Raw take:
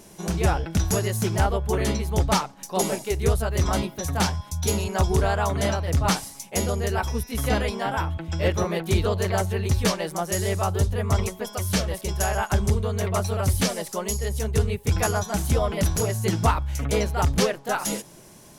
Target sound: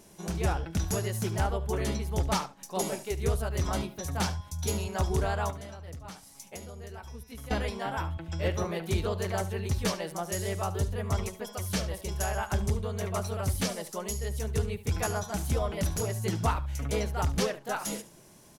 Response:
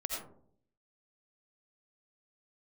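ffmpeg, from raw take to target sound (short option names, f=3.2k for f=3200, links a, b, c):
-filter_complex "[0:a]asettb=1/sr,asplit=3[a][b][c];[a]atrim=end=5.504[d];[b]atrim=start=5.5:end=7.51,asetpts=PTS-STARTPTS,afade=t=in:d=0.004:c=qsin,afade=t=out:st=2.006:d=0.004:c=qsin,acompressor=threshold=-33dB:ratio=12[e];[c]atrim=start=7.506[f];[d][e]acrossfade=d=0.004:c1=hsin:c2=qsin[g];[g][f]acrossfade=d=0.004:c1=qsin:c2=hsin,aecho=1:1:72:0.168,volume=-7dB"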